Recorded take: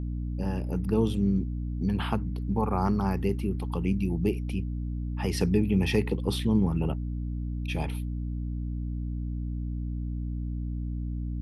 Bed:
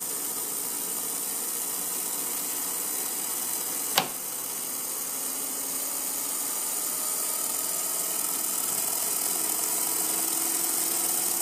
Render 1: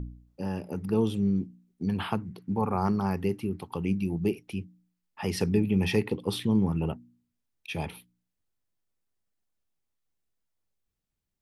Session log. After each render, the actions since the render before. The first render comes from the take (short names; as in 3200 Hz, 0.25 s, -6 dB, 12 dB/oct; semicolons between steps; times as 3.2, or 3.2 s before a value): de-hum 60 Hz, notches 5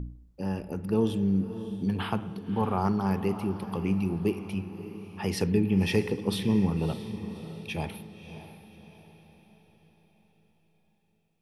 diffused feedback echo 0.596 s, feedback 46%, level -12 dB; spring tank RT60 1.2 s, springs 31/51/57 ms, chirp 75 ms, DRR 13.5 dB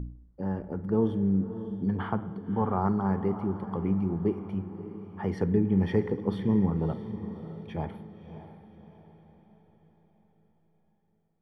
polynomial smoothing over 41 samples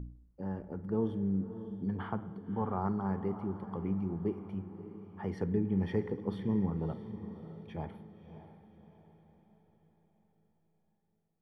gain -6.5 dB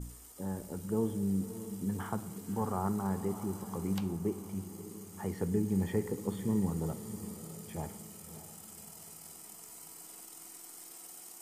add bed -23 dB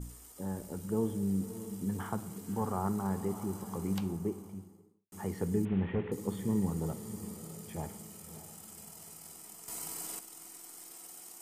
4.03–5.12 studio fade out; 5.65–6.12 delta modulation 16 kbps, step -45 dBFS; 9.68–10.19 gain +9 dB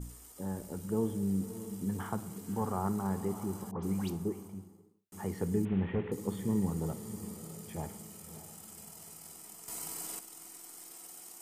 3.71–4.48 dispersion highs, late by 0.123 s, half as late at 2300 Hz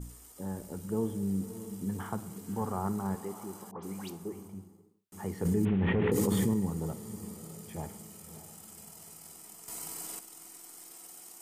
3.15–4.33 HPF 420 Hz 6 dB/oct; 5.45–6.54 fast leveller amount 100%